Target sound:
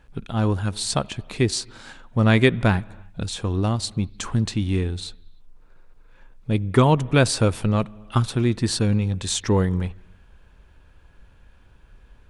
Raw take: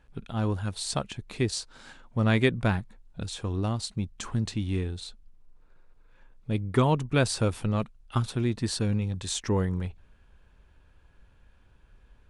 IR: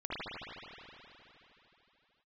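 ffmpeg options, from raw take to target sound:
-filter_complex "[0:a]asplit=2[link_01][link_02];[1:a]atrim=start_sample=2205,afade=type=out:start_time=0.41:duration=0.01,atrim=end_sample=18522,adelay=6[link_03];[link_02][link_03]afir=irnorm=-1:irlink=0,volume=-28dB[link_04];[link_01][link_04]amix=inputs=2:normalize=0,volume=6.5dB"

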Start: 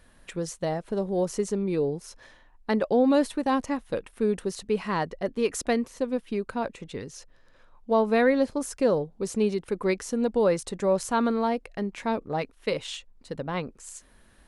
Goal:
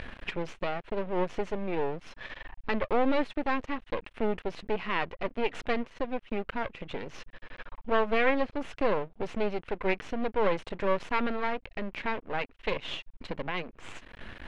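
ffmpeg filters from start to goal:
ffmpeg -i in.wav -af "acompressor=mode=upward:threshold=-25dB:ratio=2.5,aeval=exprs='max(val(0),0)':channel_layout=same,lowpass=frequency=2700:width_type=q:width=1.8" out.wav

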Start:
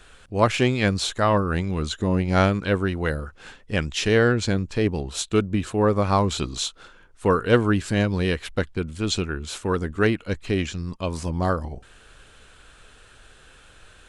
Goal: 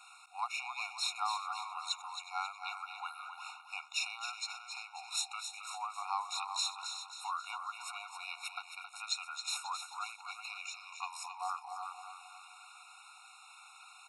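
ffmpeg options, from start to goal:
ffmpeg -i in.wav -filter_complex "[0:a]asplit=2[link_01][link_02];[link_02]aecho=0:1:362:0.158[link_03];[link_01][link_03]amix=inputs=2:normalize=0,acompressor=threshold=-28dB:ratio=6,asplit=2[link_04][link_05];[link_05]aecho=0:1:269|538|807|1076|1345:0.398|0.187|0.0879|0.0413|0.0194[link_06];[link_04][link_06]amix=inputs=2:normalize=0,afftfilt=real='re*eq(mod(floor(b*sr/1024/720),2),1)':imag='im*eq(mod(floor(b*sr/1024/720),2),1)':win_size=1024:overlap=0.75" out.wav

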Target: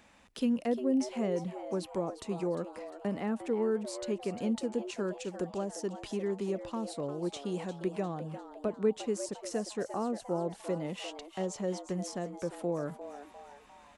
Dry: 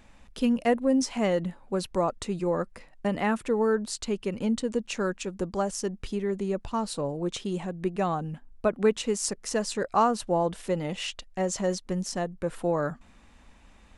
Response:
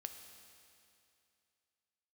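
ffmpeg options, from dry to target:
-filter_complex "[0:a]acrossover=split=470[link_01][link_02];[link_02]acompressor=threshold=-41dB:ratio=5[link_03];[link_01][link_03]amix=inputs=2:normalize=0,highpass=frequency=260:poles=1,asplit=6[link_04][link_05][link_06][link_07][link_08][link_09];[link_05]adelay=351,afreqshift=140,volume=-12dB[link_10];[link_06]adelay=702,afreqshift=280,volume=-18.6dB[link_11];[link_07]adelay=1053,afreqshift=420,volume=-25.1dB[link_12];[link_08]adelay=1404,afreqshift=560,volume=-31.7dB[link_13];[link_09]adelay=1755,afreqshift=700,volume=-38.2dB[link_14];[link_04][link_10][link_11][link_12][link_13][link_14]amix=inputs=6:normalize=0,volume=-1dB"

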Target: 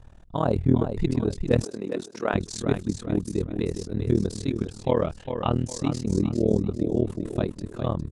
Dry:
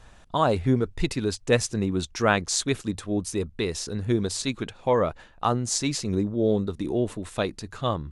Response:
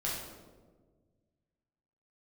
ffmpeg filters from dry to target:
-filter_complex "[0:a]asettb=1/sr,asplit=3[link_01][link_02][link_03];[link_01]atrim=end=4.824[link_04];[link_02]atrim=start=4.82:end=5.66,asetpts=PTS-STARTPTS,afade=type=in:duration=0.004:curve=qsin,afade=type=out:start_time=0.836:duration=0.004:curve=qsin,lowpass=frequency=3000:width_type=q:width=5.4[link_05];[link_03]atrim=start=5.656[link_06];[link_04][link_05]acrossfade=duration=0.004:curve1=hsin:curve2=qsin[link_07];[link_07][link_06]acrossfade=duration=0.004:curve1=qsin:curve2=hsin,tiltshelf=frequency=710:gain=7,asplit=2[link_08][link_09];[link_09]aecho=0:1:403|806|1209|1612:0.398|0.139|0.0488|0.0171[link_10];[link_08][link_10]amix=inputs=2:normalize=0,tremolo=f=39:d=0.947,asettb=1/sr,asplit=3[link_11][link_12][link_13];[link_11]atrim=end=1.644[link_14];[link_12]atrim=start=1.64:end=2.34,asetpts=PTS-STARTPTS,afade=type=in:duration=0.004:curve=qsin,afade=type=out:start_time=0.696:duration=0.004:curve=qsin,highpass=390[link_15];[link_13]atrim=start=2.336[link_16];[link_14][link_15]acrossfade=duration=0.004:curve1=hsin:curve2=qsin[link_17];[link_17][link_16]acrossfade=duration=0.004:curve1=qsin:curve2=hsin"

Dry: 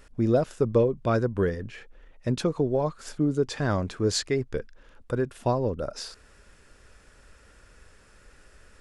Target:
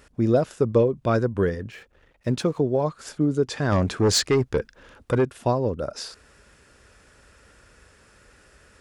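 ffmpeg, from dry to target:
ffmpeg -i in.wav -filter_complex "[0:a]asettb=1/sr,asplit=3[link_01][link_02][link_03];[link_01]atrim=end=1.714[link_04];[link_02]atrim=start=1.71:end=2.59,asetpts=PTS-STARTPTS,afade=type=in:duration=0.004:curve=qsin,afade=type=out:start_time=0.876:duration=0.004:curve=qsin,aeval=exprs='sgn(val(0))*max(abs(val(0))-0.0015,0)':channel_layout=same[link_05];[link_03]atrim=start=2.586[link_06];[link_04][link_05]acrossfade=duration=0.004:curve1=hsin:curve2=qsin[link_07];[link_07][link_06]acrossfade=duration=0.004:curve1=qsin:curve2=hsin,highpass=55,asettb=1/sr,asplit=3[link_08][link_09][link_10];[link_08]atrim=end=3.724[link_11];[link_09]atrim=start=3.72:end=5.25,asetpts=PTS-STARTPTS,afade=type=in:duration=0.004:curve=qsin,afade=type=out:start_time=1.526:duration=0.004:curve=qsin,aeval=exprs='0.237*(cos(1*acos(clip(val(0)/0.237,-1,1)))-cos(1*PI/2))+0.0473*(cos(5*acos(clip(val(0)/0.237,-1,1)))-cos(5*PI/2))':channel_layout=same[link_12];[link_10]atrim=start=5.246[link_13];[link_11][link_12]acrossfade=duration=0.004:curve1=hsin:curve2=qsin[link_14];[link_14][link_13]acrossfade=duration=0.004:curve1=qsin:curve2=hsin,volume=2.5dB" out.wav

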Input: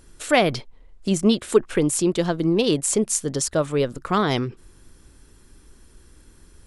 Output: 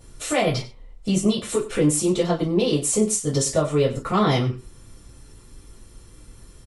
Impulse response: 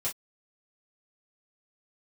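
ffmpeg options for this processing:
-filter_complex "[0:a]bandreject=frequency=1600:width=16,alimiter=limit=-15dB:level=0:latency=1:release=171,asplit=2[link_01][link_02];[link_02]adelay=93.29,volume=-15dB,highshelf=frequency=4000:gain=-2.1[link_03];[link_01][link_03]amix=inputs=2:normalize=0[link_04];[1:a]atrim=start_sample=2205[link_05];[link_04][link_05]afir=irnorm=-1:irlink=0"

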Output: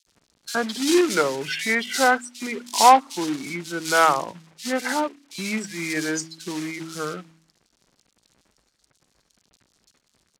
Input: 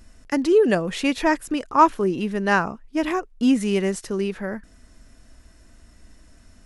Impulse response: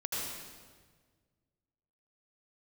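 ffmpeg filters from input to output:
-filter_complex "[0:a]afftdn=noise_reduction=24:noise_floor=-32,equalizer=frequency=3200:width=3.3:gain=-3.5,bandreject=frequency=50:width_type=h:width=6,bandreject=frequency=100:width_type=h:width=6,bandreject=frequency=150:width_type=h:width=6,bandreject=frequency=200:width_type=h:width=6,bandreject=frequency=250:width_type=h:width=6,bandreject=frequency=300:width_type=h:width=6,bandreject=frequency=350:width_type=h:width=6,bandreject=frequency=400:width_type=h:width=6,acrossover=split=390|930[link_01][link_02][link_03];[link_01]acompressor=threshold=-37dB:ratio=10[link_04];[link_04][link_02][link_03]amix=inputs=3:normalize=0,atempo=0.79,asoftclip=type=tanh:threshold=-6dB,acrusher=bits=3:mode=log:mix=0:aa=0.000001,asetrate=35721,aresample=44100,crystalizer=i=7.5:c=0,highpass=130,lowpass=5200,acrossover=split=2900[link_05][link_06];[link_05]adelay=70[link_07];[link_07][link_06]amix=inputs=2:normalize=0"

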